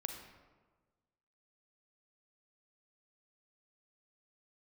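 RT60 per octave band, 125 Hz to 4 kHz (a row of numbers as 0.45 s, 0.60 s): 1.6 s, 1.5 s, 1.5 s, 1.3 s, 1.0 s, 0.75 s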